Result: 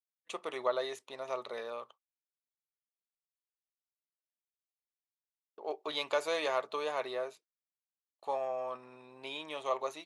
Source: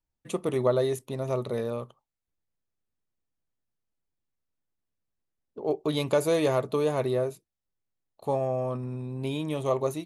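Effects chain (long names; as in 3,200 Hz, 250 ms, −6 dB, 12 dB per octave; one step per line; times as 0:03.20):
high-pass filter 860 Hz 12 dB per octave
noise gate −56 dBFS, range −33 dB
low-pass filter 5,100 Hz 12 dB per octave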